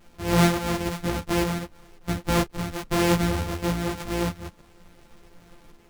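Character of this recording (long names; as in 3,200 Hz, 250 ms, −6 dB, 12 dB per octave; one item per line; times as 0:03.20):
a buzz of ramps at a fixed pitch in blocks of 256 samples
sample-and-hold tremolo
a quantiser's noise floor 10 bits, dither none
a shimmering, thickened sound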